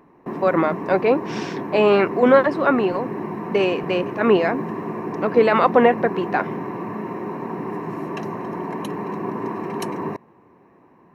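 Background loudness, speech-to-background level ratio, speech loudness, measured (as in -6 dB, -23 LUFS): -29.0 LUFS, 9.5 dB, -19.5 LUFS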